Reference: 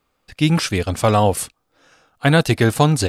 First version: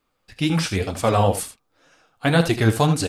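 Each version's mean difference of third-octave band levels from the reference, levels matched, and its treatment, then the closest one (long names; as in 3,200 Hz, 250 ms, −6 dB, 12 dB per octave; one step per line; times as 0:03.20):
2.5 dB: on a send: ambience of single reflections 36 ms −14.5 dB, 78 ms −11.5 dB
on the sum: flanger 2 Hz, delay 2.5 ms, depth 8.9 ms, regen +33%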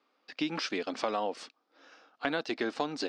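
8.0 dB: elliptic band-pass filter 260–5,200 Hz, stop band 50 dB
downward compressor 3 to 1, threshold −29 dBFS, peak gain reduction 13.5 dB
level −3 dB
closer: first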